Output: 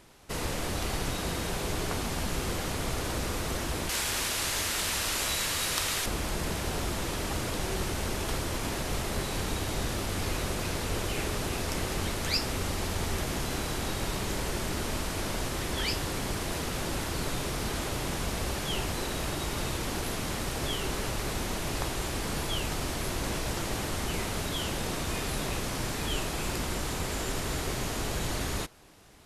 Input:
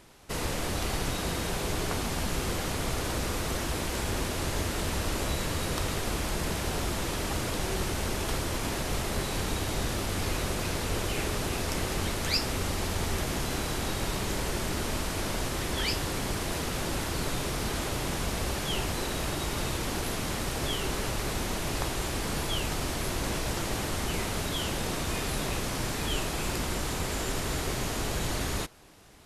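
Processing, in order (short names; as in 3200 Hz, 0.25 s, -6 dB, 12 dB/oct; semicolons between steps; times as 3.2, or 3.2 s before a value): 3.89–6.06 tilt shelf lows -8 dB, about 880 Hz; gain -1 dB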